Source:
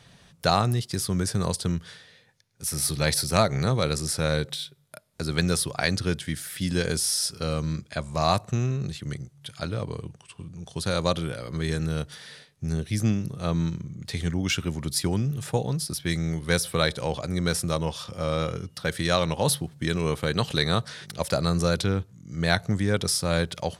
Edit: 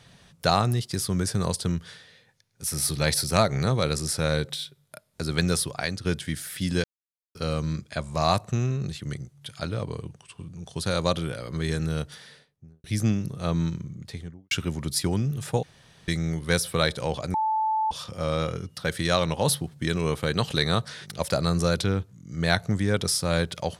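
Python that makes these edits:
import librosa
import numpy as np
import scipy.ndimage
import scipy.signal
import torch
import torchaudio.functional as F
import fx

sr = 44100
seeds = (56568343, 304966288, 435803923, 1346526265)

y = fx.studio_fade_out(x, sr, start_s=12.04, length_s=0.8)
y = fx.studio_fade_out(y, sr, start_s=13.83, length_s=0.68)
y = fx.edit(y, sr, fx.fade_out_to(start_s=5.58, length_s=0.47, floor_db=-9.5),
    fx.silence(start_s=6.84, length_s=0.51),
    fx.room_tone_fill(start_s=15.63, length_s=0.45),
    fx.bleep(start_s=17.34, length_s=0.57, hz=874.0, db=-21.5), tone=tone)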